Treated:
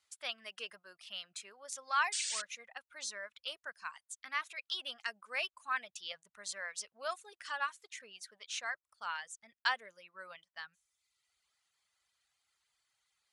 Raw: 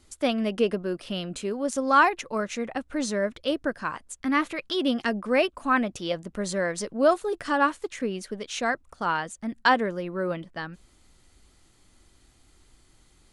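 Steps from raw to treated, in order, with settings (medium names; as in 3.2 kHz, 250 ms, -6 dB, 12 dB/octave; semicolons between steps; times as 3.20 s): frequency weighting A; painted sound noise, 2.12–2.42 s, 1.4–9.2 kHz -29 dBFS; amplifier tone stack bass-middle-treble 10-0-10; reverb removal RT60 0.9 s; tape noise reduction on one side only decoder only; trim -5 dB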